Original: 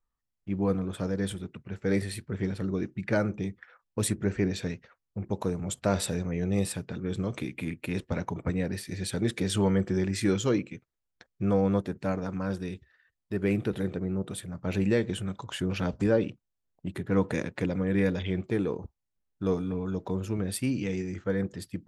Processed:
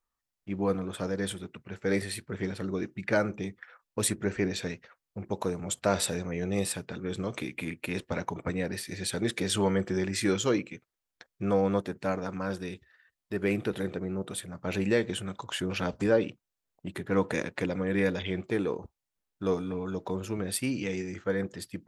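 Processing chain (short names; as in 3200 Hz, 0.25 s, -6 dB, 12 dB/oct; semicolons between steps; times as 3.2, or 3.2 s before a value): low shelf 260 Hz -10 dB; gain +3 dB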